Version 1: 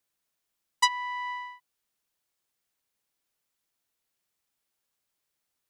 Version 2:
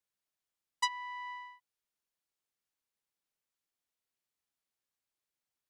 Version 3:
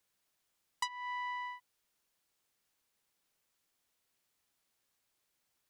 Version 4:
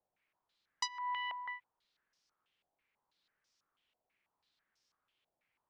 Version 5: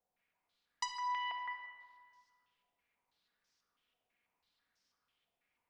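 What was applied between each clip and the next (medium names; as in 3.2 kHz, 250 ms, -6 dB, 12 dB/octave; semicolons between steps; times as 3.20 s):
treble shelf 11 kHz -4.5 dB; trim -8.5 dB
compression 6:1, threshold -46 dBFS, peak gain reduction 18.5 dB; trim +10 dB
step-sequenced low-pass 6.1 Hz 720–5400 Hz; trim -3 dB
simulated room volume 2700 m³, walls mixed, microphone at 1.8 m; trim -2.5 dB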